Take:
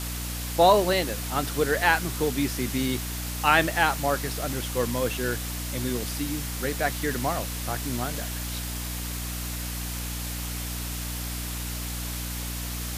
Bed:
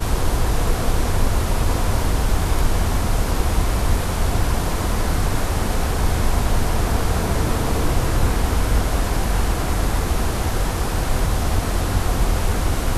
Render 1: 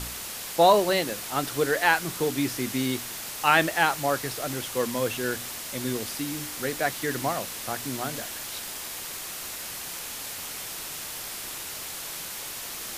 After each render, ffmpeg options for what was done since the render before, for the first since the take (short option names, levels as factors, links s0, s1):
-af "bandreject=f=60:t=h:w=4,bandreject=f=120:t=h:w=4,bandreject=f=180:t=h:w=4,bandreject=f=240:t=h:w=4,bandreject=f=300:t=h:w=4"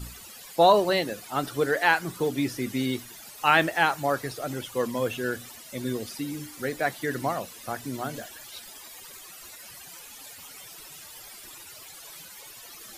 -af "afftdn=nr=15:nf=-37"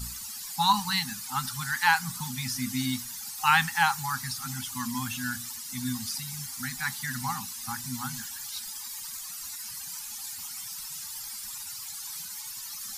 -af "highshelf=f=3900:t=q:w=1.5:g=6.5,afftfilt=real='re*(1-between(b*sr/4096,260,770))':imag='im*(1-between(b*sr/4096,260,770))':win_size=4096:overlap=0.75"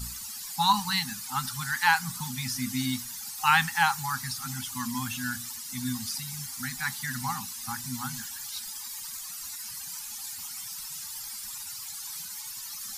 -af anull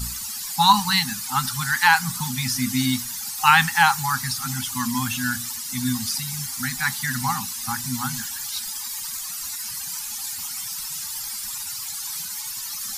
-af "volume=2.37,alimiter=limit=0.794:level=0:latency=1"